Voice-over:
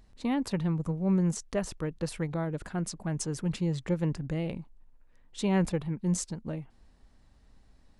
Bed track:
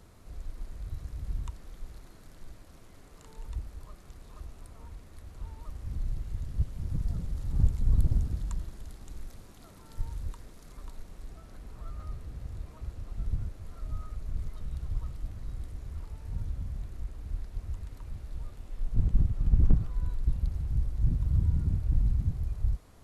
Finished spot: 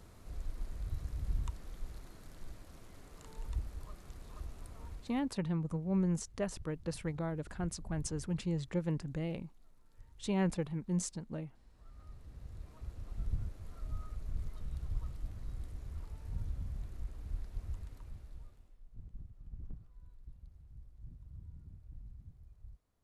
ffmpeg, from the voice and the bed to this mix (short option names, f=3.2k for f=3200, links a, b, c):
-filter_complex "[0:a]adelay=4850,volume=-5.5dB[a];[1:a]volume=16.5dB,afade=t=out:st=4.9:d=0.44:silence=0.0891251,afade=t=in:st=11.69:d=1.46:silence=0.133352,afade=t=out:st=17.7:d=1.09:silence=0.1[b];[a][b]amix=inputs=2:normalize=0"